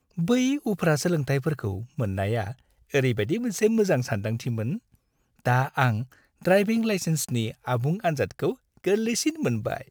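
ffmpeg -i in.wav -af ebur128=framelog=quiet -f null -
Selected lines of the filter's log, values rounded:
Integrated loudness:
  I:         -25.8 LUFS
  Threshold: -36.1 LUFS
Loudness range:
  LRA:         1.3 LU
  Threshold: -46.1 LUFS
  LRA low:   -26.7 LUFS
  LRA high:  -25.4 LUFS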